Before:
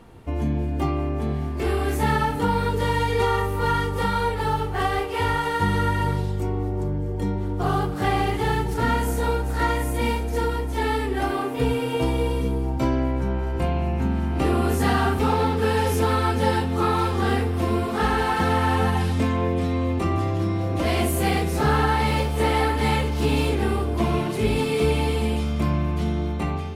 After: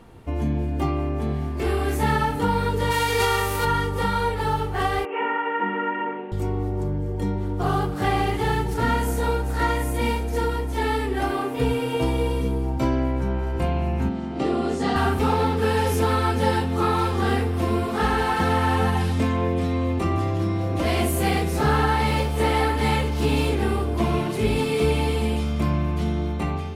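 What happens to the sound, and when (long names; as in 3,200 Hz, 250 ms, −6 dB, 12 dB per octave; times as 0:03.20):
0:02.90–0:03.64: spectral envelope flattened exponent 0.6
0:05.05–0:06.32: Chebyshev band-pass filter 210–2,800 Hz, order 5
0:14.09–0:14.96: loudspeaker in its box 170–7,300 Hz, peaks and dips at 1,000 Hz −6 dB, 1,600 Hz −7 dB, 2,500 Hz −6 dB, 6,000 Hz −3 dB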